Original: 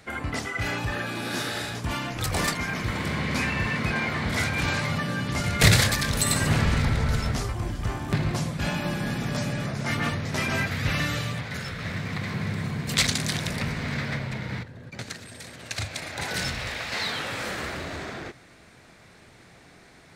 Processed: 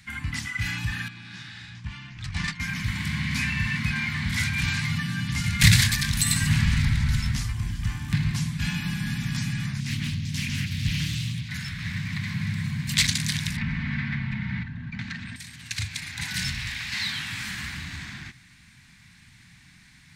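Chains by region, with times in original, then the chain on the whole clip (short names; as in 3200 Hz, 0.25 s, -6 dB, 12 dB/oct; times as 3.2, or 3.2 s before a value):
1.08–2.6 notch 250 Hz, Q 6.6 + gate -27 dBFS, range -8 dB + air absorption 120 m
9.8–11.49 band shelf 950 Hz -12.5 dB 2.4 oct + Doppler distortion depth 0.66 ms
13.57–15.36 LPF 2300 Hz + comb 4.5 ms, depth 39% + fast leveller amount 50%
whole clip: Chebyshev band-stop 180–1400 Hz, order 2; bell 1300 Hz -10.5 dB 0.41 oct; gain +2 dB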